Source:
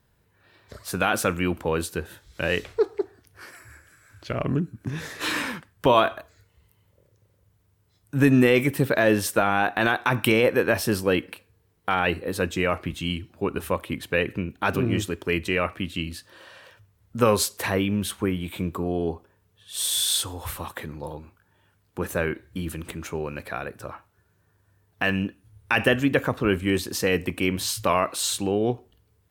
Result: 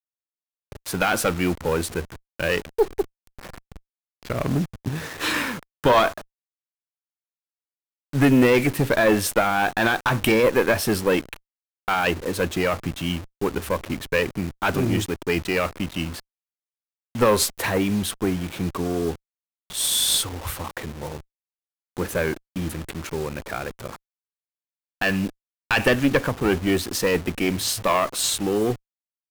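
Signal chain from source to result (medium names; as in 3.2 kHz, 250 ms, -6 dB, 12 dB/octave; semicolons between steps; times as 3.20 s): send-on-delta sampling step -34.5 dBFS; valve stage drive 14 dB, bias 0.55; trim +5.5 dB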